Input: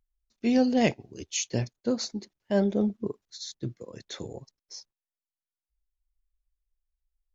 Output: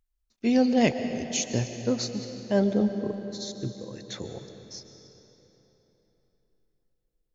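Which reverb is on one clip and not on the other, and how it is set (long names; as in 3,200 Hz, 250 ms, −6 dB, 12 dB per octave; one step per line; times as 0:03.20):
comb and all-pass reverb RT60 3.8 s, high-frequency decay 0.8×, pre-delay 90 ms, DRR 8 dB
level +1 dB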